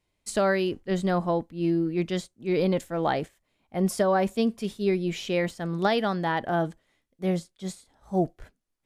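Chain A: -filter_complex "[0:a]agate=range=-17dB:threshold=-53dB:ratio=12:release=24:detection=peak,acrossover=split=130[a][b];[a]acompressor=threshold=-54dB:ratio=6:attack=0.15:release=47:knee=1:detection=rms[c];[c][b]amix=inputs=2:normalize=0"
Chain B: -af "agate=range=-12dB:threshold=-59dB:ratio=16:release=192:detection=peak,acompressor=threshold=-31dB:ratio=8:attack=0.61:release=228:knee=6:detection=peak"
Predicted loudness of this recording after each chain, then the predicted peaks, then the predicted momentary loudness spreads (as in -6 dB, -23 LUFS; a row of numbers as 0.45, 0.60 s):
-27.5, -38.5 LUFS; -9.0, -26.0 dBFS; 8, 6 LU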